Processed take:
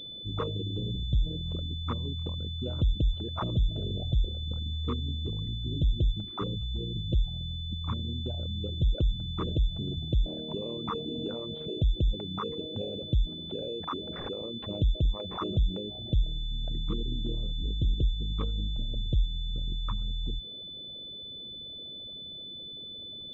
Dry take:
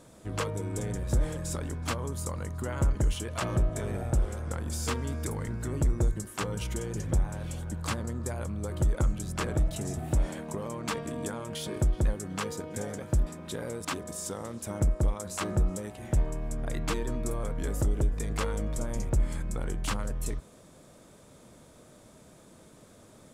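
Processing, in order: resonances exaggerated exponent 3; class-D stage that switches slowly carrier 3.5 kHz

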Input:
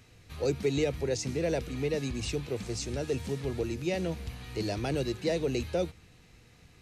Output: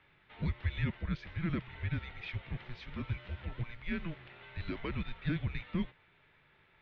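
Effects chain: high-pass 230 Hz 24 dB/octave; bass shelf 460 Hz -3.5 dB; mistuned SSB -340 Hz 330–3500 Hz; trim -1.5 dB

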